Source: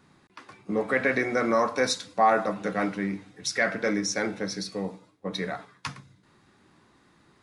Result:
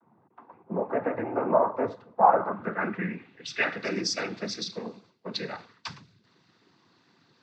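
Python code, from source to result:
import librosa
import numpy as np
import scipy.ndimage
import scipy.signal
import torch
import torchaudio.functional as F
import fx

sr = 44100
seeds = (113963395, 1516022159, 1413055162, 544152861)

y = fx.noise_vocoder(x, sr, seeds[0], bands=16)
y = fx.filter_sweep_lowpass(y, sr, from_hz=870.0, to_hz=4800.0, start_s=2.18, end_s=3.89, q=2.3)
y = y * 10.0 ** (-3.5 / 20.0)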